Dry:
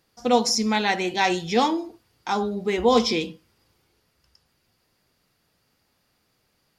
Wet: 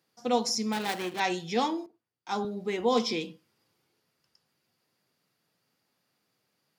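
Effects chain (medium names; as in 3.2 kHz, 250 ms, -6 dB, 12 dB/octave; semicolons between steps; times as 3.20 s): 0.72–1.20 s: dead-time distortion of 0.2 ms; high-pass 120 Hz 24 dB/octave; 1.86–2.45 s: three bands expanded up and down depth 70%; trim -7 dB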